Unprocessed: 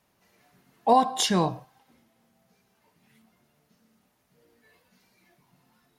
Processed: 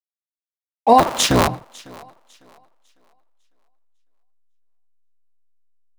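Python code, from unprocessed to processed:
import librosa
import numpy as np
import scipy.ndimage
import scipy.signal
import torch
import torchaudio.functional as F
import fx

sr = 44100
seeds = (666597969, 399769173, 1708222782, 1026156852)

y = fx.cycle_switch(x, sr, every=3, mode='inverted', at=(0.98, 1.48), fade=0.02)
y = fx.backlash(y, sr, play_db=-39.5)
y = fx.echo_thinned(y, sr, ms=551, feedback_pct=29, hz=180.0, wet_db=-23.0)
y = y * librosa.db_to_amplitude(7.5)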